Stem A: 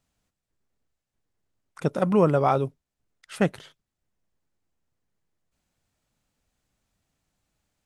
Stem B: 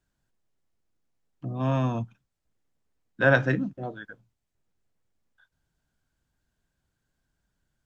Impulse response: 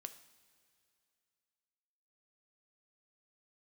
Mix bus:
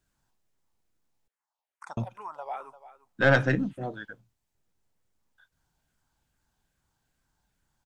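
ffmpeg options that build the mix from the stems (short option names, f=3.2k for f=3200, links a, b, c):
-filter_complex "[0:a]alimiter=limit=-15.5dB:level=0:latency=1:release=249,highpass=f=880:t=q:w=4.4,asplit=2[a][b];[b]afreqshift=-2.4[c];[a][c]amix=inputs=2:normalize=1,adelay=50,volume=-5.5dB,asplit=3[d][e][f];[e]volume=-18.5dB[g];[f]volume=-18dB[h];[1:a]highshelf=f=4.5k:g=4.5,aeval=exprs='(tanh(3.98*val(0)+0.45)-tanh(0.45))/3.98':c=same,volume=2dB,asplit=3[i][j][k];[i]atrim=end=1.28,asetpts=PTS-STARTPTS,afade=t=out:st=1.276:d=0.004:c=hsin[l];[j]atrim=start=1.28:end=1.97,asetpts=PTS-STARTPTS,volume=0[m];[k]atrim=start=1.97,asetpts=PTS-STARTPTS,afade=t=in:d=0.004:c=hsin[n];[l][m][n]concat=n=3:v=0:a=1,asplit=2[o][p];[p]apad=whole_len=348544[q];[d][q]sidechaincompress=threshold=-33dB:ratio=8:attack=11:release=1430[r];[2:a]atrim=start_sample=2205[s];[g][s]afir=irnorm=-1:irlink=0[t];[h]aecho=0:1:346:1[u];[r][o][t][u]amix=inputs=4:normalize=0"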